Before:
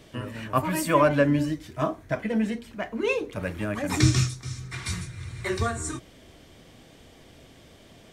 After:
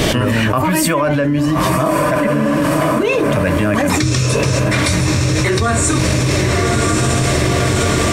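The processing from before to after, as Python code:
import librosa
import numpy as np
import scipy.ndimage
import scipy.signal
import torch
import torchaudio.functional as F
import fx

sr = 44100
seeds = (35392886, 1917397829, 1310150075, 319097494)

y = fx.resonator_bank(x, sr, root=40, chord='sus4', decay_s=0.32, at=(2.27, 2.97))
y = fx.echo_diffused(y, sr, ms=1129, feedback_pct=54, wet_db=-10)
y = fx.env_flatten(y, sr, amount_pct=100)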